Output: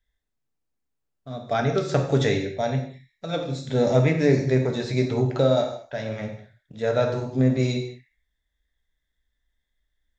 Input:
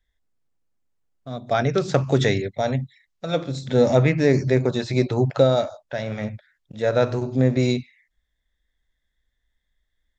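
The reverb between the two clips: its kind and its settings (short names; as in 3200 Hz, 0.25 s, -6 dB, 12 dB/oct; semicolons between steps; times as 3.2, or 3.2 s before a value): non-linear reverb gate 0.24 s falling, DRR 3 dB; gain -4 dB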